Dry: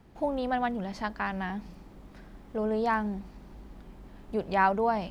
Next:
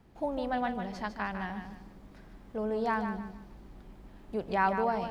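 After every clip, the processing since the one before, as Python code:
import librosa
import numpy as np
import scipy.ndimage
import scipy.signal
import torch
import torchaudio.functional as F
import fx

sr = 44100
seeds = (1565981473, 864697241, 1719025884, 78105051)

y = fx.echo_feedback(x, sr, ms=151, feedback_pct=31, wet_db=-8.0)
y = y * librosa.db_to_amplitude(-3.5)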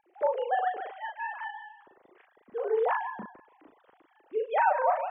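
y = fx.sine_speech(x, sr)
y = fx.doubler(y, sr, ms=38.0, db=-4)
y = y * librosa.db_to_amplitude(1.5)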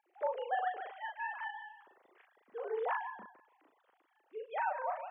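y = fx.highpass(x, sr, hz=740.0, slope=6)
y = fx.rider(y, sr, range_db=10, speed_s=2.0)
y = y * librosa.db_to_amplitude(-6.0)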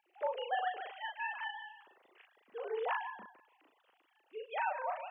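y = fx.peak_eq(x, sr, hz=2800.0, db=11.5, octaves=0.57)
y = y * librosa.db_to_amplitude(-1.0)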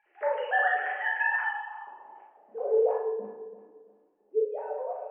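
y = fx.echo_feedback(x, sr, ms=339, feedback_pct=28, wet_db=-13.5)
y = fx.room_shoebox(y, sr, seeds[0], volume_m3=160.0, walls='mixed', distance_m=1.4)
y = fx.filter_sweep_lowpass(y, sr, from_hz=1800.0, to_hz=440.0, start_s=1.2, end_s=3.15, q=3.8)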